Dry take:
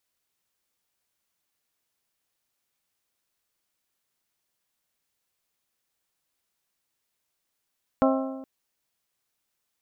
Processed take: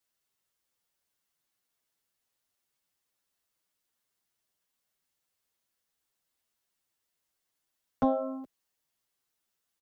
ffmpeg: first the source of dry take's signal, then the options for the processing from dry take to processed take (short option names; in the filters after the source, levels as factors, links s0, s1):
-f lavfi -i "aevalsrc='0.112*pow(10,-3*t/1.23)*sin(2*PI*266*t)+0.0891*pow(10,-3*t/0.999)*sin(2*PI*532*t)+0.0708*pow(10,-3*t/0.946)*sin(2*PI*638.4*t)+0.0562*pow(10,-3*t/0.885)*sin(2*PI*798*t)+0.0447*pow(10,-3*t/0.811)*sin(2*PI*1064*t)+0.0355*pow(10,-3*t/0.759)*sin(2*PI*1330*t)':d=0.42:s=44100"
-filter_complex "[0:a]bandreject=f=2400:w=21,acrossover=split=120|320|1300[s0][s1][s2][s3];[s3]asoftclip=type=tanh:threshold=0.0168[s4];[s0][s1][s2][s4]amix=inputs=4:normalize=0,asplit=2[s5][s6];[s6]adelay=7.9,afreqshift=-2.4[s7];[s5][s7]amix=inputs=2:normalize=1"